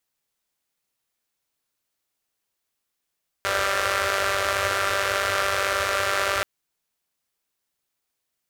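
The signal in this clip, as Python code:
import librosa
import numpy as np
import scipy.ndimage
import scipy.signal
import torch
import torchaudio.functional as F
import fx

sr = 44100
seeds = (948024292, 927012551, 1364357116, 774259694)

y = fx.engine_four(sr, seeds[0], length_s=2.98, rpm=5900, resonances_hz=(85.0, 580.0, 1300.0))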